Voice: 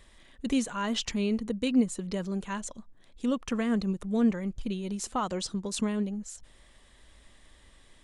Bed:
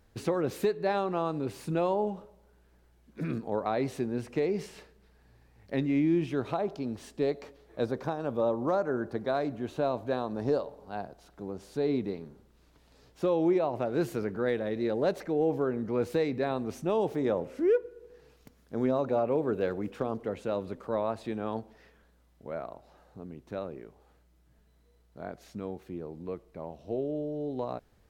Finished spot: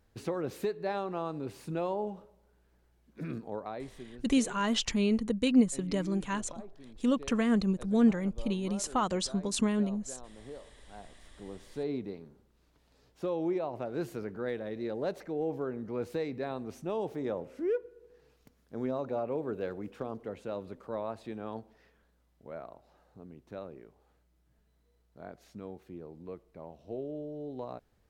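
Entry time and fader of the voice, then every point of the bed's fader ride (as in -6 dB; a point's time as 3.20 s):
3.80 s, +1.0 dB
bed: 3.42 s -5 dB
4.20 s -18 dB
10.56 s -18 dB
11.47 s -6 dB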